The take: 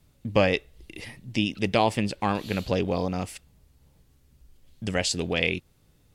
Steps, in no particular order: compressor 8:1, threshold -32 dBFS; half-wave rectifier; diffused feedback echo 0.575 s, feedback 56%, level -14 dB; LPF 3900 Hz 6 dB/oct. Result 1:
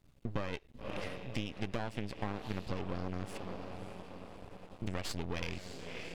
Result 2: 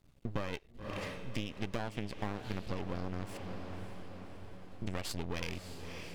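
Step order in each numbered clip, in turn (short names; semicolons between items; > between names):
diffused feedback echo > half-wave rectifier > LPF > compressor; LPF > half-wave rectifier > diffused feedback echo > compressor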